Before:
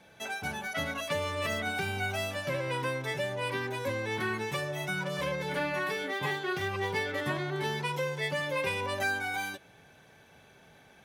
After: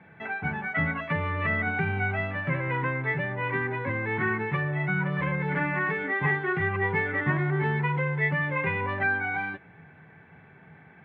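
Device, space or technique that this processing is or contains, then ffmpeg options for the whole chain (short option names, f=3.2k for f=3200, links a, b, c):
bass cabinet: -af "highpass=85,equalizer=f=89:t=q:w=4:g=7,equalizer=f=160:t=q:w=4:g=10,equalizer=f=570:t=q:w=4:g=-9,equalizer=f=2k:t=q:w=4:g=7,lowpass=f=2.1k:w=0.5412,lowpass=f=2.1k:w=1.3066,volume=4.5dB"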